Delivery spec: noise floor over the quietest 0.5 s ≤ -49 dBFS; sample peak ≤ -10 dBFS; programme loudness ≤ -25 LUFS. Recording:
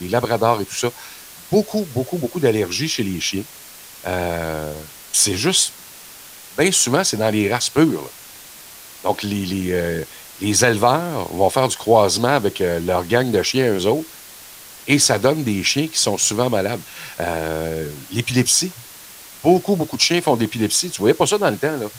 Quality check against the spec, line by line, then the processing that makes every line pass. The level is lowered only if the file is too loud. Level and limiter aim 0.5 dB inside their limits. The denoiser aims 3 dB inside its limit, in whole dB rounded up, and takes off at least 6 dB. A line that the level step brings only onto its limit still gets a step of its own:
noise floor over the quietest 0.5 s -40 dBFS: fail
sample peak -1.5 dBFS: fail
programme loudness -18.5 LUFS: fail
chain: noise reduction 6 dB, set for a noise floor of -40 dBFS; trim -7 dB; peak limiter -10.5 dBFS

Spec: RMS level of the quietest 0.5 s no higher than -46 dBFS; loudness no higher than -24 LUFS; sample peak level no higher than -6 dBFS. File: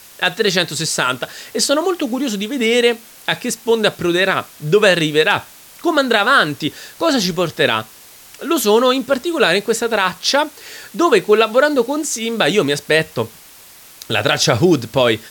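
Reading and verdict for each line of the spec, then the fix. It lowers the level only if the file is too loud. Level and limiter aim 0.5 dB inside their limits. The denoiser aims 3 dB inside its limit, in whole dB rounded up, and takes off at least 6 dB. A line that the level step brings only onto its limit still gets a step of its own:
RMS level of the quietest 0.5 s -42 dBFS: fail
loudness -16.0 LUFS: fail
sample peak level -1.5 dBFS: fail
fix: trim -8.5 dB

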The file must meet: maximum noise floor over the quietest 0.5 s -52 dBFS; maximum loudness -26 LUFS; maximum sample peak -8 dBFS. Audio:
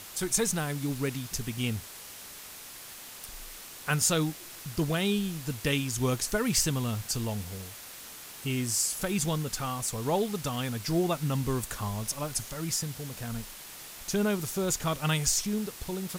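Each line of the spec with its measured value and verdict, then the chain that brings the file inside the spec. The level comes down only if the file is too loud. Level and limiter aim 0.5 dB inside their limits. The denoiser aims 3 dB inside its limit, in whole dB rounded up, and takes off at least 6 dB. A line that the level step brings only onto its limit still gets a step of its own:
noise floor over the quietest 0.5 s -45 dBFS: fail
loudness -30.0 LUFS: pass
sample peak -12.5 dBFS: pass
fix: noise reduction 10 dB, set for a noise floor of -45 dBFS

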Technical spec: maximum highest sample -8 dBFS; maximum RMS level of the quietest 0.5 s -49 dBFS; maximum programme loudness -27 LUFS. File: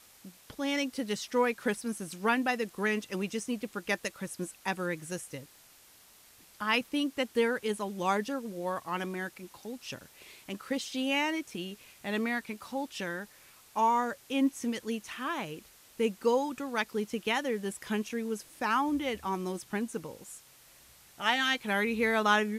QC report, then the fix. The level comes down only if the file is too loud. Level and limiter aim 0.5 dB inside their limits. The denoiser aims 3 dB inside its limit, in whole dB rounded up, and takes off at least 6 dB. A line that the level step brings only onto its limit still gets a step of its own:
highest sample -12.0 dBFS: pass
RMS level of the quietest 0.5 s -58 dBFS: pass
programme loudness -32.0 LUFS: pass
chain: none needed

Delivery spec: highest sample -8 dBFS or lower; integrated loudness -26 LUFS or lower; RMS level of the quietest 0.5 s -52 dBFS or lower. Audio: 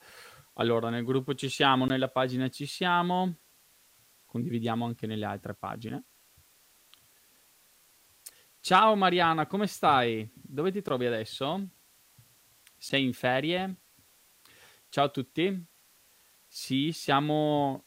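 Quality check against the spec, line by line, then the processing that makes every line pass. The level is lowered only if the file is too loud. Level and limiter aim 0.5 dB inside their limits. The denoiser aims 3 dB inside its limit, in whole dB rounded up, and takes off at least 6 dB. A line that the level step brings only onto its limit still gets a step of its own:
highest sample -9.5 dBFS: pass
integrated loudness -28.5 LUFS: pass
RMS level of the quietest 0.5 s -63 dBFS: pass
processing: none needed

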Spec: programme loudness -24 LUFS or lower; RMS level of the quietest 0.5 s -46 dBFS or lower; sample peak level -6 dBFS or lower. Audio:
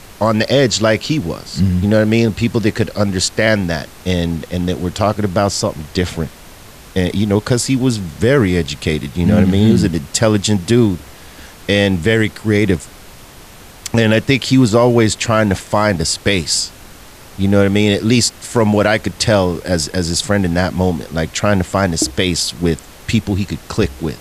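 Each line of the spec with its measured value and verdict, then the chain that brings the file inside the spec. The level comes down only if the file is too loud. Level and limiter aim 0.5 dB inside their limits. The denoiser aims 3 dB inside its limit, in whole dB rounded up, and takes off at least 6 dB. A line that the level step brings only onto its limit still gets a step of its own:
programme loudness -15.5 LUFS: fail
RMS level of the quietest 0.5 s -38 dBFS: fail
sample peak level -1.0 dBFS: fail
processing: trim -9 dB

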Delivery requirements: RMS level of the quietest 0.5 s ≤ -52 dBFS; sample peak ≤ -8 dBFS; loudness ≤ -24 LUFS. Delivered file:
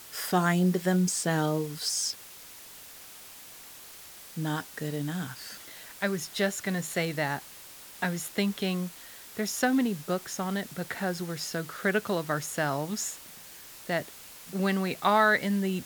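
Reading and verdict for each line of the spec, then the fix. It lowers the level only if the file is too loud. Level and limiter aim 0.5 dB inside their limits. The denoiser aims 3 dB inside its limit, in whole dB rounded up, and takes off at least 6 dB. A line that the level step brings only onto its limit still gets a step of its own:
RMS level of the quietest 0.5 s -48 dBFS: fail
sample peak -9.5 dBFS: pass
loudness -29.5 LUFS: pass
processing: noise reduction 7 dB, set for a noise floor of -48 dBFS

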